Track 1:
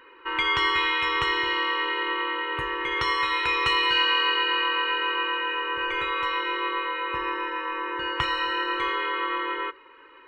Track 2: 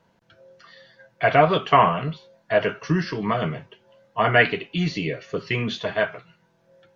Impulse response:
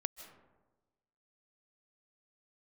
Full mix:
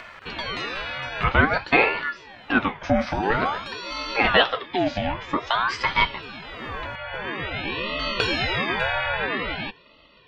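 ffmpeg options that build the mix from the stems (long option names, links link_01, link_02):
-filter_complex "[0:a]volume=-0.5dB[link_01];[1:a]highshelf=frequency=3800:gain=-11,acompressor=mode=upward:threshold=-21dB:ratio=2.5,volume=0.5dB,asplit=2[link_02][link_03];[link_03]apad=whole_len=452946[link_04];[link_01][link_04]sidechaincompress=threshold=-34dB:ratio=5:attack=11:release=1340[link_05];[link_05][link_02]amix=inputs=2:normalize=0,dynaudnorm=framelen=210:gausssize=9:maxgain=6dB,aeval=exprs='val(0)*sin(2*PI*1000*n/s+1000*0.6/0.5*sin(2*PI*0.5*n/s))':channel_layout=same"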